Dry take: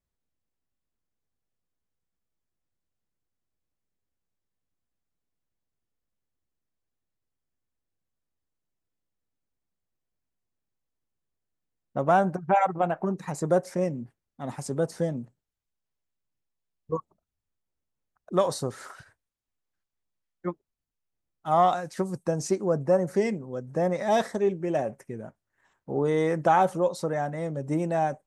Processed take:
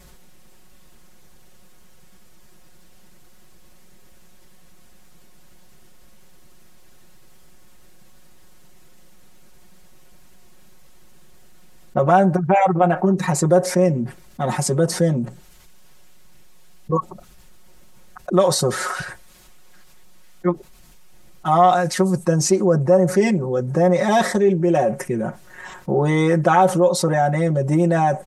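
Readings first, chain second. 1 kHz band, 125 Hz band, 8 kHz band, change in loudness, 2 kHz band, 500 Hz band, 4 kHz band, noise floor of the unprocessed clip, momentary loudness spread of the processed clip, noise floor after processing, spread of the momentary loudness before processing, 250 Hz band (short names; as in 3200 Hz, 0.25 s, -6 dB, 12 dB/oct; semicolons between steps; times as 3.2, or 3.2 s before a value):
+7.0 dB, +12.0 dB, +15.0 dB, +8.5 dB, +9.5 dB, +8.0 dB, +13.0 dB, -85 dBFS, 11 LU, -45 dBFS, 16 LU, +10.5 dB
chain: downsampling 32000 Hz; comb 5.5 ms, depth 90%; fast leveller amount 50%; gain +1.5 dB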